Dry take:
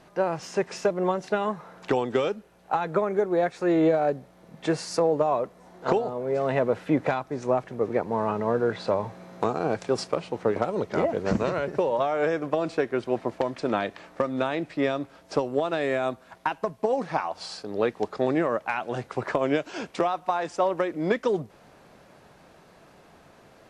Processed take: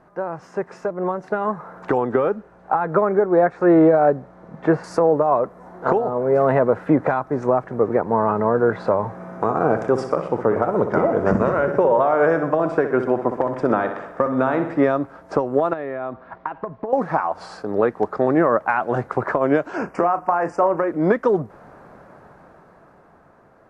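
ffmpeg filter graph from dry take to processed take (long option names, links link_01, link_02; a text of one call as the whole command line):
ffmpeg -i in.wav -filter_complex "[0:a]asettb=1/sr,asplit=3[link_01][link_02][link_03];[link_01]atrim=end=1.984[link_04];[link_02]atrim=start=1.98:end=4.84,asetpts=PTS-STARTPTS,afade=type=in:duration=0.004:curve=qsin,afade=type=out:start_time=2.856:duration=0.004:curve=qsin,acrossover=split=2800[link_05][link_06];[link_06]acompressor=threshold=-52dB:ratio=4:attack=1:release=60[link_07];[link_05][link_07]amix=inputs=2:normalize=0,lowpass=7500[link_08];[link_03]atrim=start=4.836[link_09];[link_04][link_08]acrossfade=duration=0.004:curve1=hsin:curve2=qsin[link_10];[link_10][link_09]acrossfade=duration=0.004:curve1=qsin:curve2=hsin,asettb=1/sr,asplit=3[link_11][link_12][link_13];[link_11]atrim=end=9.144[link_14];[link_12]atrim=start=9.14:end=14.84,asetpts=PTS-STARTPTS,afade=type=in:duration=0.004:curve=qsin,afade=type=out:start_time=5.696:duration=0.004:curve=qsin,asuperstop=centerf=4200:order=4:qfactor=8,aecho=1:1:62|124|186|248|310|372:0.316|0.174|0.0957|0.0526|0.0289|0.0159,atrim=end_sample=251370[link_15];[link_13]atrim=start=14.836[link_16];[link_14][link_15]acrossfade=duration=0.004:curve1=hsin:curve2=qsin[link_17];[link_17][link_16]acrossfade=duration=0.004:curve1=qsin:curve2=hsin,asettb=1/sr,asplit=3[link_18][link_19][link_20];[link_18]atrim=end=15.734[link_21];[link_19]atrim=start=15.73:end=16.93,asetpts=PTS-STARTPTS,afade=type=in:duration=0.004:curve=qsin,afade=type=out:start_time=1.196:duration=0.004:curve=qsin,lowpass=frequency=4000:width=0.5412,lowpass=frequency=4000:width=1.3066,bandreject=frequency=1500:width=17,acompressor=threshold=-32dB:ratio=10:attack=3.2:release=140:knee=1:detection=peak[link_22];[link_20]atrim=start=16.926[link_23];[link_21][link_22]acrossfade=duration=0.004:curve1=hsin:curve2=qsin[link_24];[link_24][link_23]acrossfade=duration=0.004:curve1=qsin:curve2=hsin,asettb=1/sr,asplit=3[link_25][link_26][link_27];[link_25]atrim=end=19.764[link_28];[link_26]atrim=start=19.76:end=20.88,asetpts=PTS-STARTPTS,afade=type=in:duration=0.004:curve=qsin,afade=type=out:start_time=1.116:duration=0.004:curve=qsin,acompressor=threshold=-25dB:ratio=2:attack=3.2:release=140:knee=1:detection=peak,asuperstop=centerf=3700:order=8:qfactor=2.2,asplit=2[link_29][link_30];[link_30]adelay=35,volume=-12dB[link_31];[link_29][link_31]amix=inputs=2:normalize=0,atrim=end_sample=49392[link_32];[link_27]atrim=start=20.876[link_33];[link_28][link_32]acrossfade=duration=0.004:curve1=hsin:curve2=qsin[link_34];[link_34][link_33]acrossfade=duration=0.004:curve1=qsin:curve2=hsin,highshelf=frequency=2100:width_type=q:width=1.5:gain=-13,alimiter=limit=-15dB:level=0:latency=1:release=241,dynaudnorm=framelen=140:gausssize=21:maxgain=8.5dB" out.wav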